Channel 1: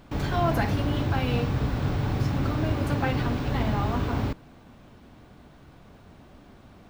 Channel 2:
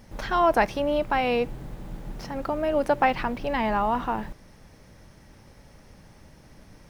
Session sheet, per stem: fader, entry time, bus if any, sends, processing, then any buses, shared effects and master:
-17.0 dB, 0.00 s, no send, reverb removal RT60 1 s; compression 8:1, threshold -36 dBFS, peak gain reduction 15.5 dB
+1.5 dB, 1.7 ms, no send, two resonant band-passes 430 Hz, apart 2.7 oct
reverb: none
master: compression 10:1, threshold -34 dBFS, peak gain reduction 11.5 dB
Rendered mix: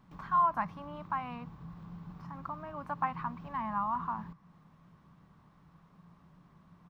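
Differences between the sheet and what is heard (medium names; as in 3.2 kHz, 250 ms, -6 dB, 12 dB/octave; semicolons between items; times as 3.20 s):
stem 1: missing reverb removal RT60 1 s; master: missing compression 10:1, threshold -34 dBFS, peak gain reduction 11.5 dB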